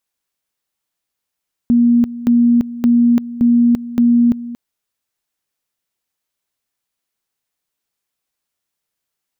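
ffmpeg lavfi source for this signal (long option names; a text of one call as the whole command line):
ffmpeg -f lavfi -i "aevalsrc='pow(10,(-8-16*gte(mod(t,0.57),0.34))/20)*sin(2*PI*238*t)':duration=2.85:sample_rate=44100" out.wav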